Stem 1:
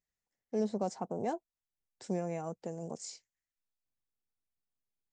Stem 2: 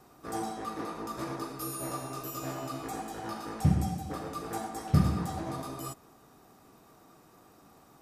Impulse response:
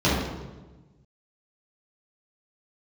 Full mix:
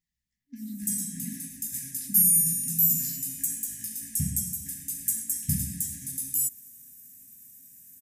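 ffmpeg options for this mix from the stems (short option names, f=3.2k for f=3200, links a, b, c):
-filter_complex "[0:a]acompressor=threshold=-37dB:ratio=6,volume=-4dB,asplit=2[a][b];[b]volume=-23dB[c];[1:a]aexciter=amount=13.5:drive=6:freq=6.5k,adynamicequalizer=threshold=0.00631:dfrequency=3000:dqfactor=0.7:tfrequency=3000:tqfactor=0.7:attack=5:release=100:ratio=0.375:range=1.5:mode=boostabove:tftype=highshelf,adelay=550,volume=-12dB[d];[2:a]atrim=start_sample=2205[e];[c][e]afir=irnorm=-1:irlink=0[f];[a][d][f]amix=inputs=3:normalize=0,afftfilt=real='re*(1-between(b*sr/4096,290,1600))':imag='im*(1-between(b*sr/4096,290,1600))':win_size=4096:overlap=0.75,acontrast=55"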